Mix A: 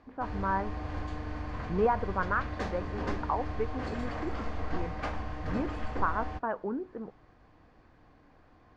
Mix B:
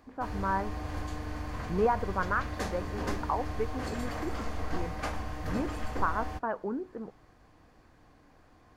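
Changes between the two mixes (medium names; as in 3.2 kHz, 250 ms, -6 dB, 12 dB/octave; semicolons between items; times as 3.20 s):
background: add treble shelf 4.6 kHz +5 dB; master: remove low-pass 4.8 kHz 12 dB/octave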